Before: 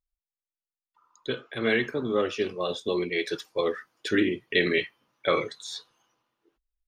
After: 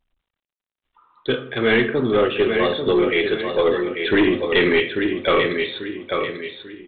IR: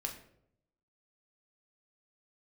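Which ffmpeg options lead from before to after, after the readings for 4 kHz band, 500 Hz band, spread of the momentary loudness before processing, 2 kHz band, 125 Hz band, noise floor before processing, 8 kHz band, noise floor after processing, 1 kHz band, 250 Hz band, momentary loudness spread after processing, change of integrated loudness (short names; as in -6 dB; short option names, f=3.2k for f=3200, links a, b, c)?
+7.5 dB, +9.5 dB, 11 LU, +8.0 dB, +9.0 dB, under -85 dBFS, under -30 dB, under -85 dBFS, +9.0 dB, +9.0 dB, 8 LU, +8.0 dB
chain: -filter_complex "[0:a]aecho=1:1:841|1682|2523|3364:0.422|0.156|0.0577|0.0214,asplit=2[a][b];[1:a]atrim=start_sample=2205[c];[b][c]afir=irnorm=-1:irlink=0,volume=-2dB[d];[a][d]amix=inputs=2:normalize=0,aeval=exprs='0.562*(cos(1*acos(clip(val(0)/0.562,-1,1)))-cos(1*PI/2))+0.0708*(cos(3*acos(clip(val(0)/0.562,-1,1)))-cos(3*PI/2))+0.0355*(cos(4*acos(clip(val(0)/0.562,-1,1)))-cos(4*PI/2))+0.141*(cos(5*acos(clip(val(0)/0.562,-1,1)))-cos(5*PI/2))+0.00631*(cos(7*acos(clip(val(0)/0.562,-1,1)))-cos(7*PI/2))':c=same" -ar 8000 -c:a pcm_mulaw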